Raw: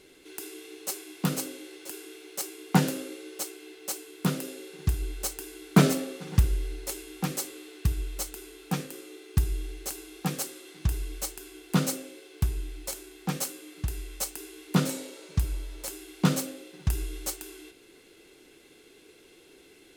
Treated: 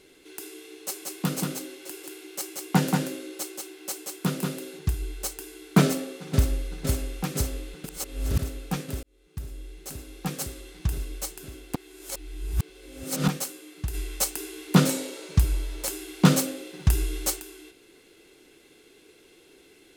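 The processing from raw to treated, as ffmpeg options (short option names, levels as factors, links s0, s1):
-filter_complex "[0:a]asettb=1/sr,asplit=3[s0][s1][s2];[s0]atrim=end=0.844[s3];[s1]atrim=start=0.84:end=4.79,asetpts=PTS-STARTPTS,afade=t=in:d=0.004:c=qsin,afade=t=out:st=3.946:d=0.004:c=qsin,aecho=1:1:182:0.668,atrim=end_sample=174195[s4];[s2]atrim=start=4.786[s5];[s3][s4]acrossfade=d=0.004:c1=hsin:c2=qsin[s6];[s6][s5]acrossfade=d=0.004:c1=qsin:c2=hsin,asplit=2[s7][s8];[s8]afade=t=in:st=5.82:d=0.01,afade=t=out:st=6.72:d=0.01,aecho=0:1:510|1020|1530|2040|2550|3060|3570|4080|4590|5100|5610|6120:0.530884|0.424708|0.339766|0.271813|0.21745|0.17396|0.139168|0.111335|0.0890676|0.0712541|0.0570033|0.0456026[s9];[s7][s9]amix=inputs=2:normalize=0,asplit=3[s10][s11][s12];[s10]afade=t=out:st=13.93:d=0.02[s13];[s11]acontrast=58,afade=t=in:st=13.93:d=0.02,afade=t=out:st=17.39:d=0.02[s14];[s12]afade=t=in:st=17.39:d=0.02[s15];[s13][s14][s15]amix=inputs=3:normalize=0,asplit=6[s16][s17][s18][s19][s20][s21];[s16]atrim=end=7.842[s22];[s17]atrim=start=7.838:end=8.392,asetpts=PTS-STARTPTS,areverse[s23];[s18]atrim=start=8.388:end=9.03,asetpts=PTS-STARTPTS,afade=t=out:st=0.638:d=0.004:c=hsin[s24];[s19]atrim=start=9.03:end=11.752,asetpts=PTS-STARTPTS,afade=t=in:d=1.43[s25];[s20]atrim=start=11.748:end=13.282,asetpts=PTS-STARTPTS,areverse[s26];[s21]atrim=start=13.278[s27];[s22][s23]acrossfade=d=0.004:c1=hsin:c2=hsin[s28];[s24][s25]concat=n=2:v=0:a=1[s29];[s28][s29]acrossfade=d=0.004:c1=hsin:c2=hsin[s30];[s30][s26]acrossfade=d=0.004:c1=hsin:c2=hsin[s31];[s31][s27]acrossfade=d=0.004:c1=hsin:c2=hsin"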